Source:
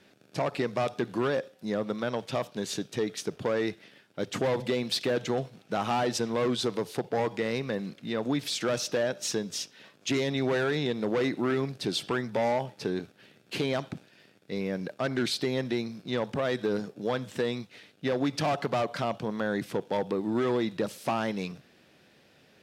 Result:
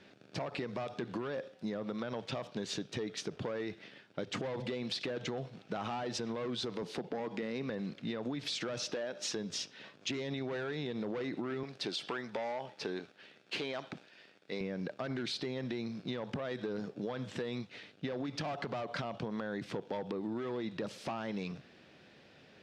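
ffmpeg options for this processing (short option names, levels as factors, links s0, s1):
-filter_complex "[0:a]asettb=1/sr,asplit=3[s0][s1][s2];[s0]atrim=end=6.824[s3];[s1]atrim=start=6.82:end=7.7,asetpts=PTS-STARTPTS,afade=t=in:d=0.004:c=qsin,afade=t=out:st=0.876:d=0.004:c=qsin,highpass=f=190:t=q:w=1.7[s4];[s2]atrim=start=7.696[s5];[s3][s4]acrossfade=d=0.004:c1=hsin:c2=qsin[s6];[s6][s5]acrossfade=d=0.004:c1=qsin:c2=hsin,asettb=1/sr,asplit=3[s7][s8][s9];[s7]atrim=end=8.914[s10];[s8]atrim=start=8.91:end=9.36,asetpts=PTS-STARTPTS,afade=t=in:d=0.004:c=qsin,afade=t=out:st=0.446:d=0.004:c=qsin,equalizer=f=110:t=o:w=1:g=-12.5[s11];[s9]atrim=start=9.356[s12];[s10][s11]acrossfade=d=0.004:c1=hsin:c2=qsin[s13];[s13][s12]acrossfade=d=0.004:c1=qsin:c2=hsin,asettb=1/sr,asplit=3[s14][s15][s16];[s14]atrim=end=11.634[s17];[s15]atrim=start=11.63:end=14.61,asetpts=PTS-STARTPTS,afade=t=in:d=0.004:c=qsin,afade=t=out:st=2.976:d=0.004:c=qsin,highpass=f=520:p=1[s18];[s16]atrim=start=14.606[s19];[s17][s18]acrossfade=d=0.004:c1=hsin:c2=qsin[s20];[s20][s19]acrossfade=d=0.004:c1=qsin:c2=hsin,lowpass=5200,alimiter=limit=0.0631:level=0:latency=1:release=36,acompressor=threshold=0.0178:ratio=6,volume=1.12"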